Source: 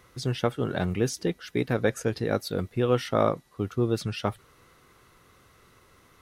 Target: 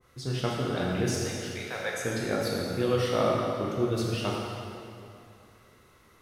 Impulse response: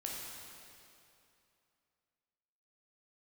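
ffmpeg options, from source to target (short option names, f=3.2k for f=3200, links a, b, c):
-filter_complex "[0:a]asettb=1/sr,asplit=3[a][b][c];[a]atrim=end=1.234[d];[b]atrim=start=1.23:end=2,asetpts=PTS-STARTPTS,afade=t=in:d=0.004:c=qsin,afade=t=out:st=0.766:d=0.004:c=qsin,highpass=f=590:w=0.5412,highpass=f=590:w=1.3066[e];[c]atrim=start=1.996[f];[d][e]acrossfade=d=0.004:c1=hsin:c2=qsin[g];[g][f]acrossfade=d=0.004:c1=qsin:c2=hsin[h];[1:a]atrim=start_sample=2205[i];[h][i]afir=irnorm=-1:irlink=0,adynamicequalizer=threshold=0.0112:dfrequency=1500:dqfactor=0.7:tfrequency=1500:tqfactor=0.7:attack=5:release=100:ratio=0.375:range=2:mode=boostabove:tftype=highshelf,volume=-2dB"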